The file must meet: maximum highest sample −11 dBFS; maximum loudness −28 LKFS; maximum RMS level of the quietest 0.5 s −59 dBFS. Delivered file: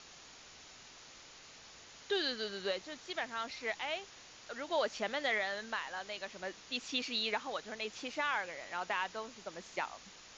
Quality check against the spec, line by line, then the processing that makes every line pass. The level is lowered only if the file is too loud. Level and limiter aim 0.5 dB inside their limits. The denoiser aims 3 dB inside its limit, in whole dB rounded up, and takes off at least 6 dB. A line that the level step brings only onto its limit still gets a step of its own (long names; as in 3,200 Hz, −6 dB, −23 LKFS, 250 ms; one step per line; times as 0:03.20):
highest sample −21.5 dBFS: in spec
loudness −37.5 LKFS: in spec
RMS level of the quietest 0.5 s −55 dBFS: out of spec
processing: broadband denoise 7 dB, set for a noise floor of −55 dBFS